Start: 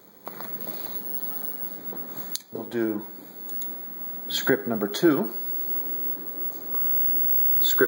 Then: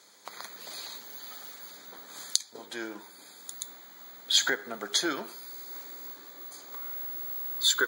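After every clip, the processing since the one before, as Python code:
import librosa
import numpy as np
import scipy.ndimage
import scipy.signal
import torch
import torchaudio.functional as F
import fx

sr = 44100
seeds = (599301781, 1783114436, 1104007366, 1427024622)

y = fx.weighting(x, sr, curve='ITU-R 468')
y = y * librosa.db_to_amplitude(-4.5)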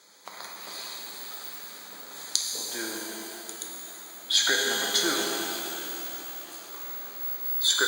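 y = fx.rev_shimmer(x, sr, seeds[0], rt60_s=3.5, semitones=12, shimmer_db=-8, drr_db=-1.5)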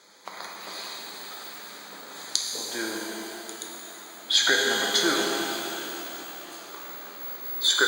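y = fx.high_shelf(x, sr, hz=6100.0, db=-9.0)
y = y * librosa.db_to_amplitude(4.0)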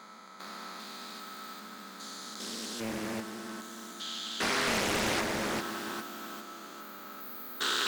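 y = fx.spec_steps(x, sr, hold_ms=400)
y = fx.small_body(y, sr, hz=(220.0, 1300.0), ring_ms=75, db=17)
y = fx.doppler_dist(y, sr, depth_ms=0.95)
y = y * librosa.db_to_amplitude(-5.5)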